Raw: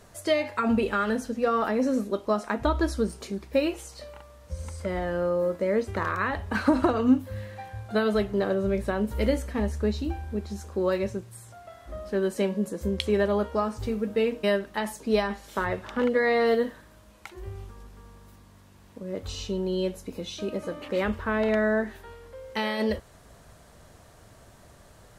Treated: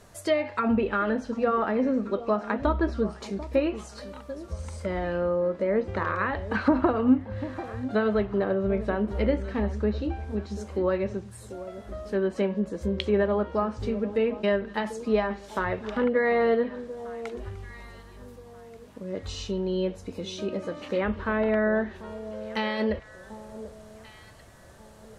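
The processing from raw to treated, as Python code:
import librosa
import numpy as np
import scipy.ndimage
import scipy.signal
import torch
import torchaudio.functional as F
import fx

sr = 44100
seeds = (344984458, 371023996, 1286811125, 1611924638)

y = fx.echo_alternate(x, sr, ms=741, hz=980.0, feedback_pct=53, wet_db=-13.5)
y = fx.env_lowpass_down(y, sr, base_hz=2400.0, full_db=-21.5)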